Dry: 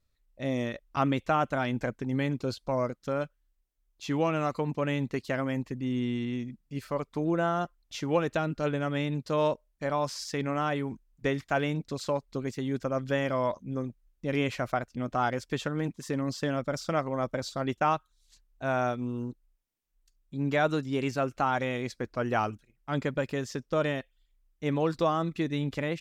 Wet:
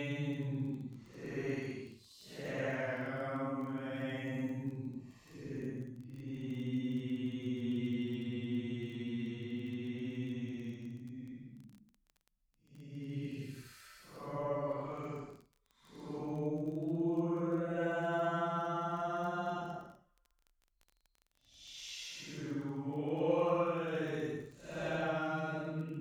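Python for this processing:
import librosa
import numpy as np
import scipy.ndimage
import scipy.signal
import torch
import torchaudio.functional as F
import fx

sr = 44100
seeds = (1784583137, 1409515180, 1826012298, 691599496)

y = fx.paulstretch(x, sr, seeds[0], factor=7.3, window_s=0.1, from_s=4.95)
y = fx.dmg_crackle(y, sr, seeds[1], per_s=20.0, level_db=-39.0)
y = y * librosa.db_to_amplitude(-8.5)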